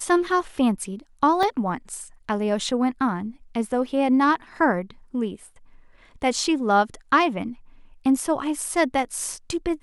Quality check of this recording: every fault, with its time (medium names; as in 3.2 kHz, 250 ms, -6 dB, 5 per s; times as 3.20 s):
1.43 s: dropout 2.2 ms